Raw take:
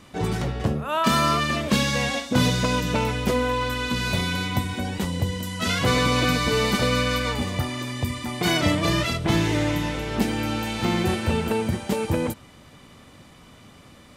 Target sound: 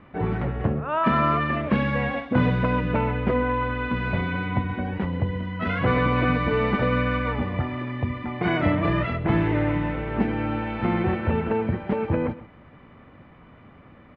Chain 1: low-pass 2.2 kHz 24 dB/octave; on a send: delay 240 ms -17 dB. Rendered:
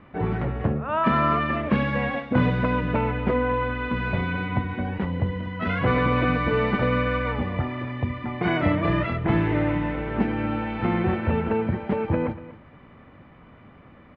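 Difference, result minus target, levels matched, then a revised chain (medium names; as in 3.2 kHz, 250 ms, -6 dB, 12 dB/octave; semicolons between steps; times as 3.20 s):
echo 111 ms late
low-pass 2.2 kHz 24 dB/octave; on a send: delay 129 ms -17 dB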